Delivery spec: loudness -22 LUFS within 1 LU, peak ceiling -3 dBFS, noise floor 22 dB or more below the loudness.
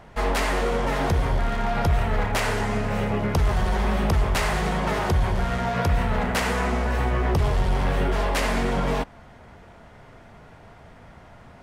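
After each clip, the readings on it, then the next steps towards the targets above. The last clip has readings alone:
loudness -24.0 LUFS; peak level -12.5 dBFS; loudness target -22.0 LUFS
-> trim +2 dB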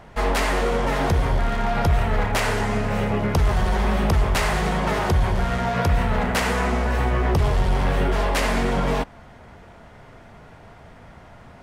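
loudness -22.0 LUFS; peak level -10.5 dBFS; noise floor -46 dBFS

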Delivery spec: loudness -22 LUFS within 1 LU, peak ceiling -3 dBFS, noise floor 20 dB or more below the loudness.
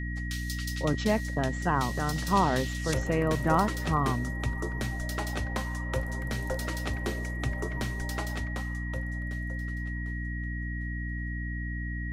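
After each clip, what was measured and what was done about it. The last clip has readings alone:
hum 60 Hz; highest harmonic 300 Hz; hum level -31 dBFS; steady tone 1.9 kHz; tone level -39 dBFS; loudness -31.0 LUFS; peak level -11.0 dBFS; loudness target -22.0 LUFS
-> hum notches 60/120/180/240/300 Hz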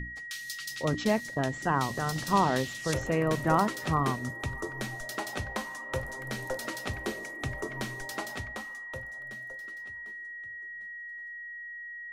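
hum not found; steady tone 1.9 kHz; tone level -39 dBFS
-> band-stop 1.9 kHz, Q 30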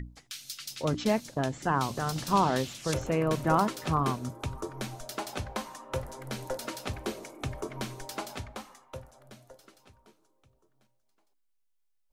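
steady tone not found; loudness -32.0 LUFS; peak level -12.0 dBFS; loudness target -22.0 LUFS
-> trim +10 dB; peak limiter -3 dBFS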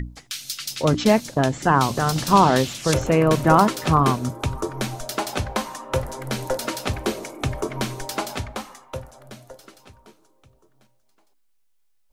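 loudness -22.0 LUFS; peak level -3.0 dBFS; noise floor -62 dBFS

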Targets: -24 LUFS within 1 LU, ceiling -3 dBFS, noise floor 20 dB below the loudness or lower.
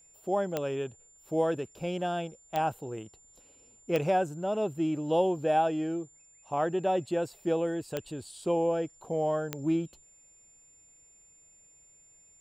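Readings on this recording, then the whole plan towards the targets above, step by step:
clicks found 5; steady tone 7.2 kHz; tone level -57 dBFS; loudness -30.5 LUFS; peak level -13.5 dBFS; loudness target -24.0 LUFS
-> de-click; band-stop 7.2 kHz, Q 30; trim +6.5 dB

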